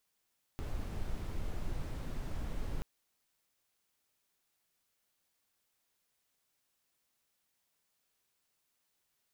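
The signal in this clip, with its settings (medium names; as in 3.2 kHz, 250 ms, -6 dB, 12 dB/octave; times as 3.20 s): noise brown, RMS -36.5 dBFS 2.23 s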